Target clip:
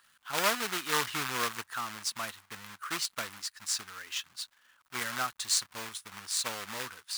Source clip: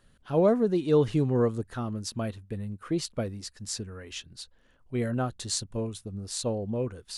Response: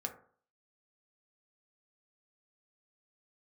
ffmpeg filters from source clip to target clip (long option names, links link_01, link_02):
-af "acrusher=bits=2:mode=log:mix=0:aa=0.000001,highpass=frequency=320:poles=1,lowshelf=frequency=760:width_type=q:width=1.5:gain=-14,volume=2.5dB"